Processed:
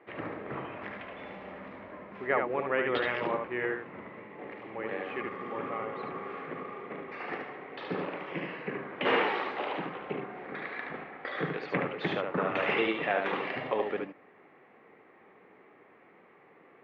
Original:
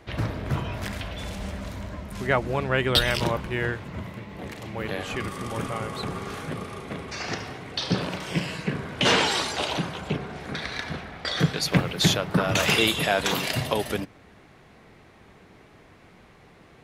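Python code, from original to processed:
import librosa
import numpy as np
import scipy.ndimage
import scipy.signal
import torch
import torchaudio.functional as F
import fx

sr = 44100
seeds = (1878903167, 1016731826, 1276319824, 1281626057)

p1 = fx.cabinet(x, sr, low_hz=410.0, low_slope=12, high_hz=2000.0, hz=(650.0, 960.0, 1500.0), db=(-7, -5, -8))
y = p1 + fx.echo_single(p1, sr, ms=73, db=-4.5, dry=0)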